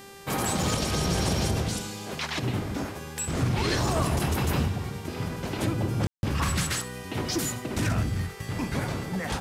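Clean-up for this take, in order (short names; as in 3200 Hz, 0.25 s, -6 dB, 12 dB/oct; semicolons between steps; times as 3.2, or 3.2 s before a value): de-hum 395 Hz, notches 36; room tone fill 6.07–6.23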